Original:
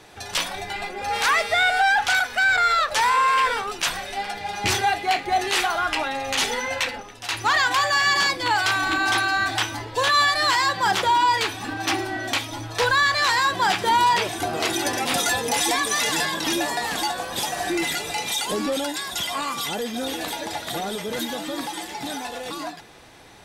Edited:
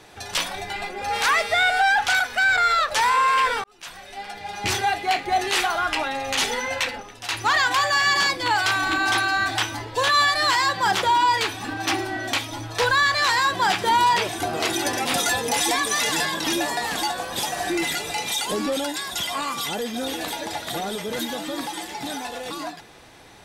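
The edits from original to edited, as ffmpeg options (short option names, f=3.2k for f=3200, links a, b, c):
-filter_complex "[0:a]asplit=2[a][b];[a]atrim=end=3.64,asetpts=PTS-STARTPTS,afade=t=out:st=3.636:d=0.004:c=hsin[c];[b]atrim=start=3.64,asetpts=PTS-STARTPTS,afade=t=in:d=1.8:c=qsin[d];[c][d]concat=n=2:v=0:a=1"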